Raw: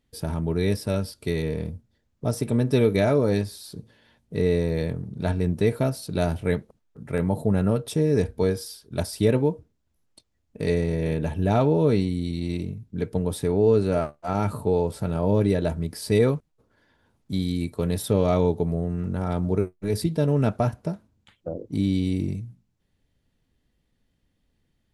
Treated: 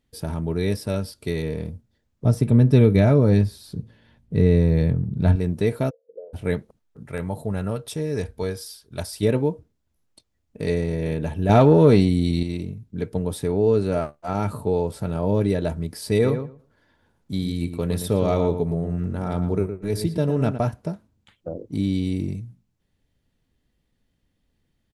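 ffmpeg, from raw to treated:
-filter_complex "[0:a]asettb=1/sr,asplit=3[s0][s1][s2];[s0]atrim=end=2.254[s3];[s1]atrim=start=2.25:end=5.36,asetpts=PTS-STARTPTS,afade=t=in:d=0.004:c=qsin,afade=t=out:st=3.106:d=0.004:c=qsin,bass=f=250:g=10,treble=f=4000:g=-5[s4];[s2]atrim=start=5.356[s5];[s3][s4]acrossfade=d=0.004:c1=hsin:c2=qsin[s6];[s6][s5]acrossfade=d=0.004:c1=qsin:c2=hsin,asplit=3[s7][s8][s9];[s7]afade=t=out:st=5.89:d=0.02[s10];[s8]asuperpass=centerf=490:order=4:qfactor=7,afade=t=in:st=5.89:d=0.02,afade=t=out:st=6.33:d=0.02[s11];[s9]afade=t=in:st=6.33:d=0.02[s12];[s10][s11][s12]amix=inputs=3:normalize=0,asettb=1/sr,asplit=3[s13][s14][s15];[s13]atrim=end=7.054[s16];[s14]atrim=start=7.05:end=9.23,asetpts=PTS-STARTPTS,afade=t=in:d=0.004:c=qsin,afade=t=out:st=2.176:d=0.004:c=qsin,equalizer=f=250:t=o:w=2.6:g=-6.5[s17];[s15]atrim=start=9.226[s18];[s16][s17]acrossfade=d=0.004:c1=hsin:c2=qsin[s19];[s19][s18]acrossfade=d=0.004:c1=qsin:c2=hsin,asettb=1/sr,asplit=3[s20][s21][s22];[s20]atrim=end=11.494[s23];[s21]atrim=start=11.49:end=12.43,asetpts=PTS-STARTPTS,afade=t=in:d=0.004:c=qsin,afade=t=out:st=0.936:d=0.004:c=qsin,acontrast=81[s24];[s22]atrim=start=12.426[s25];[s23][s24]acrossfade=d=0.004:c1=hsin:c2=qsin[s26];[s26][s25]acrossfade=d=0.004:c1=qsin:c2=hsin,asplit=3[s27][s28][s29];[s27]afade=t=out:st=16.23:d=0.02[s30];[s28]asplit=2[s31][s32];[s32]adelay=114,lowpass=f=2300:p=1,volume=0.398,asplit=2[s33][s34];[s34]adelay=114,lowpass=f=2300:p=1,volume=0.16,asplit=2[s35][s36];[s36]adelay=114,lowpass=f=2300:p=1,volume=0.16[s37];[s31][s33][s35][s37]amix=inputs=4:normalize=0,afade=t=in:st=16.23:d=0.02,afade=t=out:st=20.57:d=0.02[s38];[s29]afade=t=in:st=20.57:d=0.02[s39];[s30][s38][s39]amix=inputs=3:normalize=0"

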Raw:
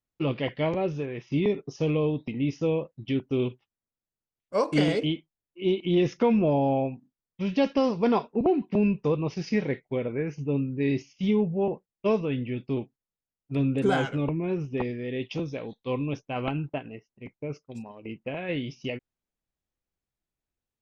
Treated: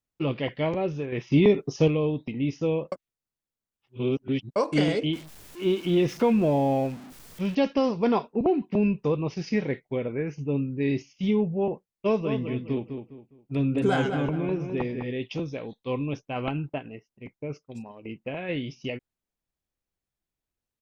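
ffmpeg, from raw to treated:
-filter_complex "[0:a]asettb=1/sr,asplit=3[s0][s1][s2];[s0]atrim=end=1.124[s3];[s1]atrim=start=1.12:end=1.88,asetpts=PTS-STARTPTS,afade=t=in:d=0.004:c=qsin,afade=t=out:st=0.756:d=0.004:c=qsin,acontrast=62[s4];[s2]atrim=start=1.876[s5];[s3][s4]acrossfade=d=0.004:c1=hsin:c2=qsin[s6];[s6][s5]acrossfade=d=0.004:c1=qsin:c2=hsin,asettb=1/sr,asplit=3[s7][s8][s9];[s7]atrim=end=5.134[s10];[s8]atrim=start=5.13:end=7.55,asetpts=PTS-STARTPTS,afade=t=in:d=0.004:c=qsin,afade=t=out:st=2.416:d=0.004:c=qsin,aeval=exprs='val(0)+0.5*0.0112*sgn(val(0))':c=same[s11];[s9]atrim=start=7.546[s12];[s10][s11]acrossfade=d=0.004:c1=hsin:c2=qsin[s13];[s13][s12]acrossfade=d=0.004:c1=qsin:c2=hsin,asplit=3[s14][s15][s16];[s14]afade=t=out:st=12.2:d=0.02[s17];[s15]asplit=2[s18][s19];[s19]adelay=205,lowpass=f=3000:p=1,volume=0.447,asplit=2[s20][s21];[s21]adelay=205,lowpass=f=3000:p=1,volume=0.31,asplit=2[s22][s23];[s23]adelay=205,lowpass=f=3000:p=1,volume=0.31,asplit=2[s24][s25];[s25]adelay=205,lowpass=f=3000:p=1,volume=0.31[s26];[s18][s20][s22][s24][s26]amix=inputs=5:normalize=0,afade=t=in:st=12.2:d=0.02,afade=t=out:st=15.11:d=0.02[s27];[s16]afade=t=in:st=15.11:d=0.02[s28];[s17][s27][s28]amix=inputs=3:normalize=0,asplit=3[s29][s30][s31];[s29]atrim=end=2.922[s32];[s30]atrim=start=2.918:end=4.562,asetpts=PTS-STARTPTS,areverse[s33];[s31]atrim=start=4.558[s34];[s32][s33]acrossfade=d=0.004:c1=hsin:c2=hsin[s35];[s35][s34]acrossfade=d=0.004:c1=hsin:c2=hsin"

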